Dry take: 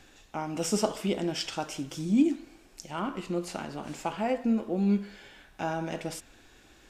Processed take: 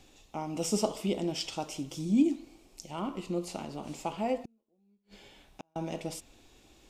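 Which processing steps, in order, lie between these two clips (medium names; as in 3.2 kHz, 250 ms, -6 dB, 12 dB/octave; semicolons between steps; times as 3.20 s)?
peaking EQ 1.6 kHz -13.5 dB 0.53 oct; 4.43–5.76 s: inverted gate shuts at -29 dBFS, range -42 dB; trim -1.5 dB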